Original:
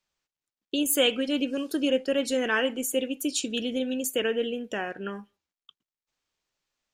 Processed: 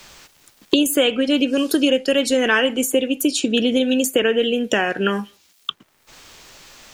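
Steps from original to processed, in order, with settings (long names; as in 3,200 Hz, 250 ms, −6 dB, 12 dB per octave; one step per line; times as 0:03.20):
multiband upward and downward compressor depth 100%
level +8.5 dB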